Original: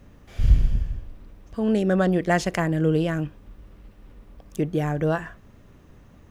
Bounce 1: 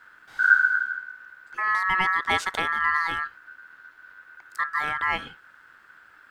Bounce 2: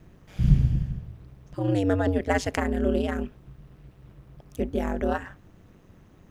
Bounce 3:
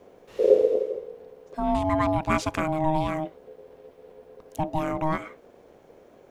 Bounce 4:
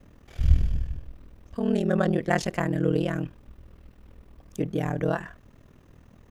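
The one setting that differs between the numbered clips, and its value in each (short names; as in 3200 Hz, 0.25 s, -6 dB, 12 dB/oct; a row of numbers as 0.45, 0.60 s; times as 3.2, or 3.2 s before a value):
ring modulator, frequency: 1500, 96, 470, 20 Hz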